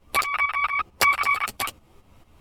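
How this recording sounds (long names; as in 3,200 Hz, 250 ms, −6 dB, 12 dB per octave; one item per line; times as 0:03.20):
tremolo saw up 4.5 Hz, depth 70%
a shimmering, thickened sound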